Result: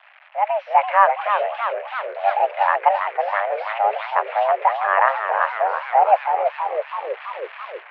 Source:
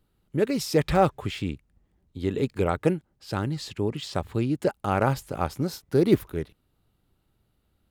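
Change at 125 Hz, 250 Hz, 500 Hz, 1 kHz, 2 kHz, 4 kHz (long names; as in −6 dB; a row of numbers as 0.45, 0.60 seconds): below −40 dB, below −25 dB, +4.5 dB, +15.5 dB, +13.5 dB, −2.0 dB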